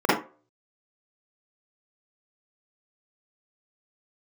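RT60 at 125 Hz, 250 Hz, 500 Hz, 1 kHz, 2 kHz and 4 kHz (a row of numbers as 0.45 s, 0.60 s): 0.30 s, 0.30 s, 0.40 s, 0.30 s, 0.30 s, 0.20 s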